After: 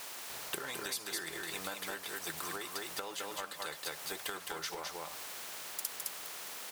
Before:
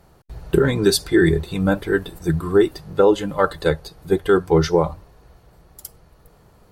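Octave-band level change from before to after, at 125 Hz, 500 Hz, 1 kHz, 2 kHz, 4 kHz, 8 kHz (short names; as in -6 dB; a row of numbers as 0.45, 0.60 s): -35.0, -28.0, -15.5, -13.5, -10.0, -6.0 dB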